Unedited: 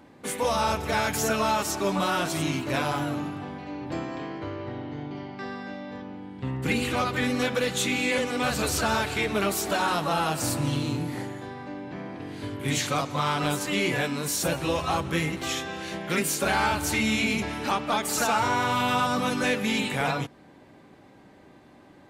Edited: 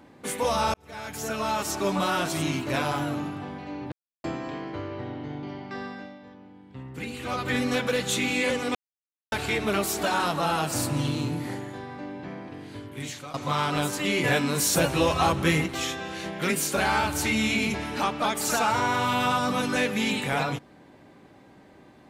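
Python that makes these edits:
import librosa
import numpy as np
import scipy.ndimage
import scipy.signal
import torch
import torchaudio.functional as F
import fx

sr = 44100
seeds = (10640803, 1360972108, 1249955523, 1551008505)

y = fx.edit(x, sr, fx.fade_in_span(start_s=0.74, length_s=1.07),
    fx.insert_silence(at_s=3.92, length_s=0.32),
    fx.fade_down_up(start_s=5.54, length_s=1.66, db=-9.5, fade_s=0.34),
    fx.silence(start_s=8.43, length_s=0.57),
    fx.fade_out_to(start_s=11.84, length_s=1.18, floor_db=-16.0),
    fx.clip_gain(start_s=13.92, length_s=1.42, db=4.0), tone=tone)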